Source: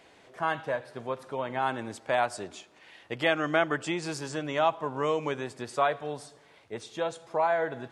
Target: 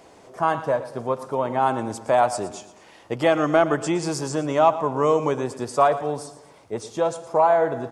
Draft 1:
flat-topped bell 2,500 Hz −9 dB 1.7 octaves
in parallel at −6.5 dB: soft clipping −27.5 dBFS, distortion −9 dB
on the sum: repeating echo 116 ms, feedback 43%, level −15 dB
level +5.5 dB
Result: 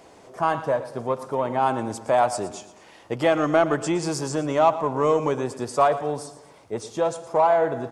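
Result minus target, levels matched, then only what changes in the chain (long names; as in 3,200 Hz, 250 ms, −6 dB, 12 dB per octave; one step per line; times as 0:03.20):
soft clipping: distortion +10 dB
change: soft clipping −18 dBFS, distortion −19 dB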